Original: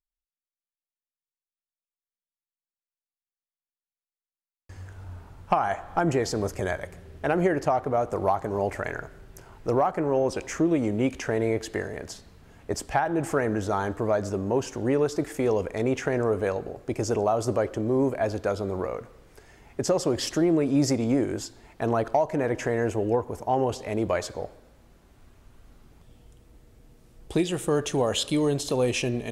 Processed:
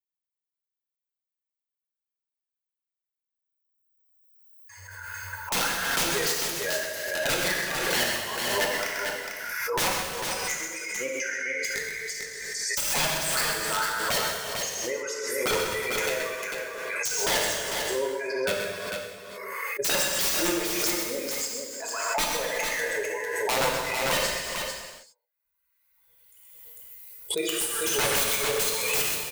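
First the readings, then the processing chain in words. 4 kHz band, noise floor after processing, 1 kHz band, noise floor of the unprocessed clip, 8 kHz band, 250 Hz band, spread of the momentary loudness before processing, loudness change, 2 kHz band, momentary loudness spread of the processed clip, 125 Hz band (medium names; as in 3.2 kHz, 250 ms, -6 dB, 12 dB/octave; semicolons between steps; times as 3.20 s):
+9.5 dB, under -85 dBFS, -2.5 dB, under -85 dBFS, +11.0 dB, -11.5 dB, 11 LU, 0.0 dB, +8.5 dB, 9 LU, -12.5 dB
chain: expander on every frequency bin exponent 2; treble shelf 2.1 kHz +11.5 dB; comb 2 ms, depth 55%; de-hum 150.6 Hz, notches 3; LFO high-pass sine 1.6 Hz 560–2500 Hz; integer overflow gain 22 dB; on a send: multi-tap echo 128/448 ms -7/-5.5 dB; on the sum: gated-style reverb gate 430 ms falling, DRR -1.5 dB; swell ahead of each attack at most 28 dB/s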